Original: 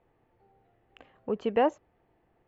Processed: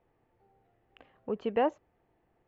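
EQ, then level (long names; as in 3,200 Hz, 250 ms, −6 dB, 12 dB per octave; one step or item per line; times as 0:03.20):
low-pass filter 5,200 Hz
−3.0 dB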